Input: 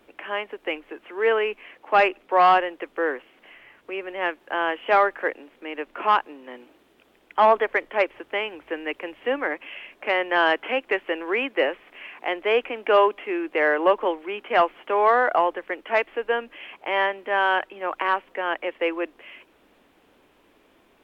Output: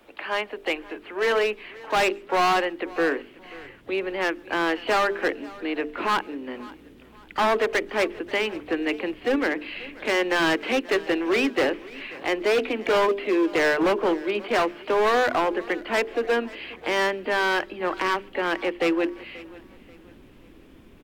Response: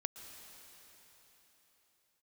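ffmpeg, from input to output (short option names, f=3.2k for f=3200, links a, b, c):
-filter_complex "[0:a]bandreject=f=50:t=h:w=6,bandreject=f=100:t=h:w=6,bandreject=f=150:t=h:w=6,bandreject=f=200:t=h:w=6,bandreject=f=250:t=h:w=6,bandreject=f=300:t=h:w=6,bandreject=f=350:t=h:w=6,bandreject=f=400:t=h:w=6,bandreject=f=450:t=h:w=6,asubboost=boost=7.5:cutoff=240,acrossover=split=200|1000[a][b][c];[a]acompressor=threshold=-51dB:ratio=8[d];[d][b][c]amix=inputs=3:normalize=0,volume=21dB,asoftclip=hard,volume=-21dB,asplit=2[e][f];[f]asetrate=66075,aresample=44100,atempo=0.66742,volume=-15dB[g];[e][g]amix=inputs=2:normalize=0,aecho=1:1:535|1070|1605:0.0944|0.0349|0.0129,asplit=2[h][i];[1:a]atrim=start_sample=2205,atrim=end_sample=6615[j];[i][j]afir=irnorm=-1:irlink=0,volume=-12dB[k];[h][k]amix=inputs=2:normalize=0,volume=1.5dB"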